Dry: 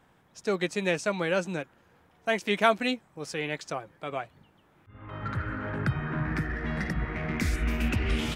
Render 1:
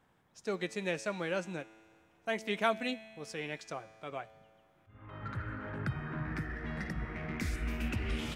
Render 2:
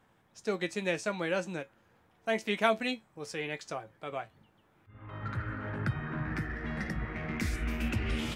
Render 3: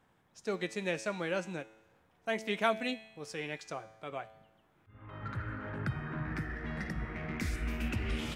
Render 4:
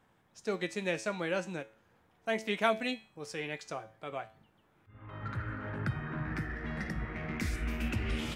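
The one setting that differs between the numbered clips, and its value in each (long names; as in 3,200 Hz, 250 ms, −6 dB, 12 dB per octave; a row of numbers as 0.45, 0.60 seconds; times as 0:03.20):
tuned comb filter, decay: 2.1, 0.17, 1, 0.41 seconds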